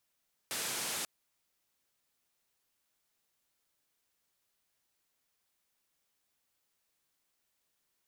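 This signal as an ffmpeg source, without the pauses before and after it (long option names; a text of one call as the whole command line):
ffmpeg -f lavfi -i "anoisesrc=color=white:duration=0.54:sample_rate=44100:seed=1,highpass=frequency=130,lowpass=frequency=11000,volume=-29.2dB" out.wav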